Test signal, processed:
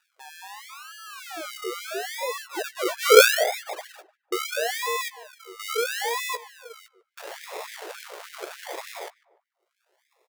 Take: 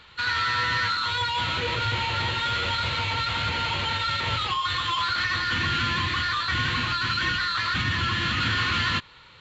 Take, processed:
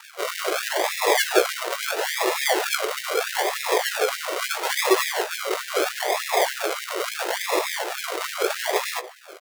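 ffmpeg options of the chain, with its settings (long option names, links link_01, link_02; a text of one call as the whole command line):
ffmpeg -i in.wav -filter_complex "[0:a]aemphasis=mode=production:type=50kf,bandreject=frequency=1800:width=11,asubboost=boost=6.5:cutoff=100,alimiter=limit=-16dB:level=0:latency=1:release=127,acompressor=mode=upward:threshold=-36dB:ratio=2.5,lowpass=frequency=3400:width_type=q:width=8,acrusher=samples=41:mix=1:aa=0.000001:lfo=1:lforange=24.6:lforate=0.76,asplit=2[link_01][link_02];[link_02]adelay=16,volume=-9dB[link_03];[link_01][link_03]amix=inputs=2:normalize=0,asplit=2[link_04][link_05];[link_05]adelay=148,lowpass=frequency=1400:poles=1,volume=-16.5dB,asplit=2[link_06][link_07];[link_07]adelay=148,lowpass=frequency=1400:poles=1,volume=0.41,asplit=2[link_08][link_09];[link_09]adelay=148,lowpass=frequency=1400:poles=1,volume=0.41,asplit=2[link_10][link_11];[link_11]adelay=148,lowpass=frequency=1400:poles=1,volume=0.41[link_12];[link_06][link_08][link_10][link_12]amix=inputs=4:normalize=0[link_13];[link_04][link_13]amix=inputs=2:normalize=0,afftfilt=real='re*gte(b*sr/1024,330*pow(1600/330,0.5+0.5*sin(2*PI*3.4*pts/sr)))':imag='im*gte(b*sr/1024,330*pow(1600/330,0.5+0.5*sin(2*PI*3.4*pts/sr)))':win_size=1024:overlap=0.75,volume=-1.5dB" out.wav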